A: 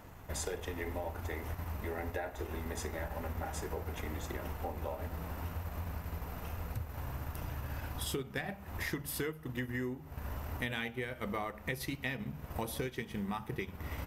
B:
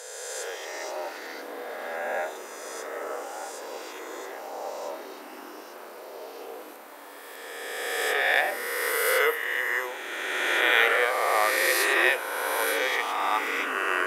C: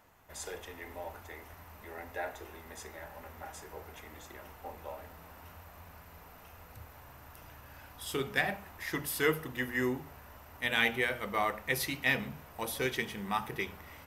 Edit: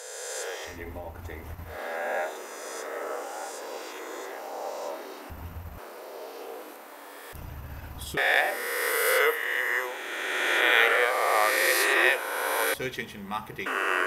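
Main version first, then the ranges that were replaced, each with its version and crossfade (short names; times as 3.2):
B
0.71–1.71 from A, crossfade 0.16 s
5.3–5.78 from A
7.33–8.17 from A
12.74–13.66 from C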